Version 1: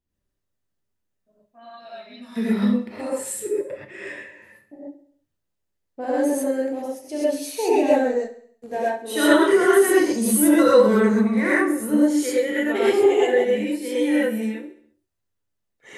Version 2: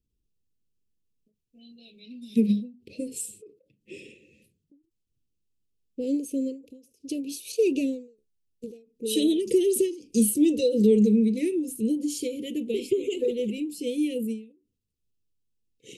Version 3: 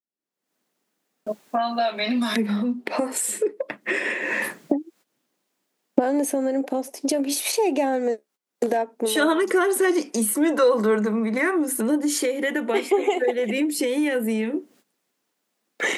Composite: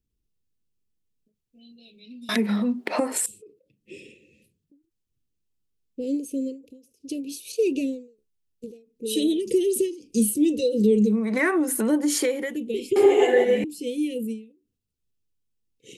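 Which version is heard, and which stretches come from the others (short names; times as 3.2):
2
2.29–3.26 from 3
11.21–12.45 from 3, crossfade 0.24 s
12.96–13.64 from 1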